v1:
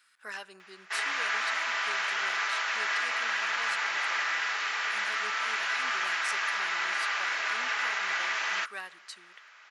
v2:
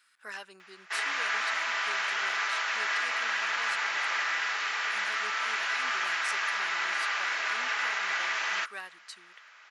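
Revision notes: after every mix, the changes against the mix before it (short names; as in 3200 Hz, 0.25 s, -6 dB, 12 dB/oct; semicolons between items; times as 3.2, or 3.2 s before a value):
speech: send -11.5 dB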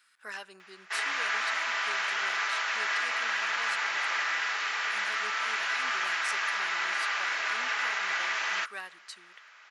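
speech: send +9.0 dB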